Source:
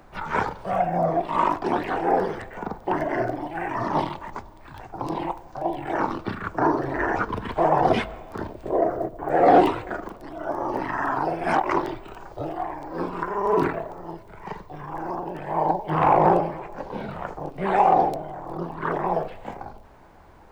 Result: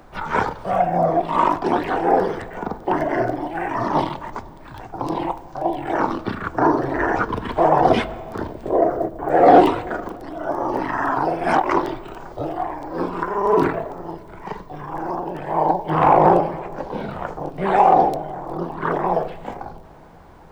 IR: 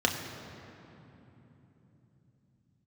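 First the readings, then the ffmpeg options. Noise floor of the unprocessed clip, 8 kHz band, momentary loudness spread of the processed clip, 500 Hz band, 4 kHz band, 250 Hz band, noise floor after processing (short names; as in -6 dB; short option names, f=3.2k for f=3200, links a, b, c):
-47 dBFS, n/a, 17 LU, +4.5 dB, +4.0 dB, +4.5 dB, -41 dBFS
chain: -filter_complex "[0:a]asplit=2[a][b];[1:a]atrim=start_sample=2205[c];[b][c]afir=irnorm=-1:irlink=0,volume=-27dB[d];[a][d]amix=inputs=2:normalize=0,volume=3.5dB"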